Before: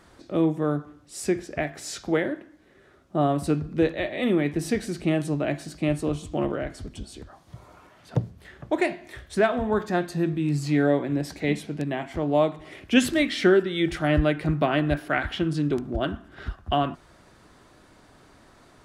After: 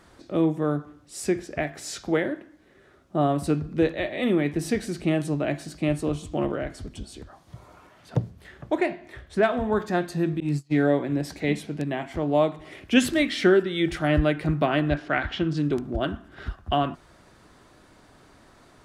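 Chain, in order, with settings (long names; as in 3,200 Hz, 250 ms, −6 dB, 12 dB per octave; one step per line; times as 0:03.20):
0:08.78–0:09.43: high-shelf EQ 3,900 Hz −10.5 dB
0:10.40–0:10.90: noise gate −24 dBFS, range −32 dB
0:14.89–0:15.57: low-pass filter 6,600 Hz 24 dB per octave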